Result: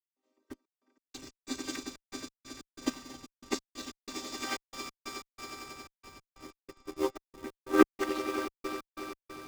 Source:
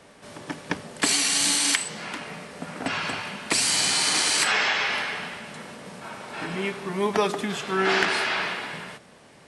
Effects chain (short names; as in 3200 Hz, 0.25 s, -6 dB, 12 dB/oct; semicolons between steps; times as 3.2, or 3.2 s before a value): chord vocoder minor triad, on C4; reverb removal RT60 1.3 s; on a send: swelling echo 91 ms, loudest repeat 8, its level -8 dB; on the sum: step gate ".xxx.x.x" 92 bpm -60 dB; added harmonics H 3 -20 dB, 6 -38 dB, 7 -34 dB, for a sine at -8.5 dBFS; in parallel at -7 dB: Schmitt trigger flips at -30 dBFS; on the sum: tone controls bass +2 dB, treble +10 dB; upward expander 2.5:1, over -38 dBFS; gain +2 dB